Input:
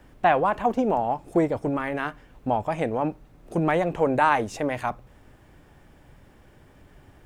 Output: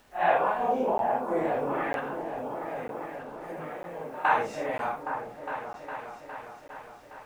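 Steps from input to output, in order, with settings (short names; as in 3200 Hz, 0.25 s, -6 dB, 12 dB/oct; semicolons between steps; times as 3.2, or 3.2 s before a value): phase scrambler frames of 0.2 s; tone controls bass -12 dB, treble -8 dB; 1.99–4.25 compressor 16:1, threshold -34 dBFS, peak gain reduction 17.5 dB; bit-crush 10-bit; bell 300 Hz -6.5 dB 0.24 oct; repeats that get brighter 0.409 s, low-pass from 400 Hz, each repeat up 2 oct, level -6 dB; crackling interface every 0.95 s, samples 512, zero, from 0.98; gain -2 dB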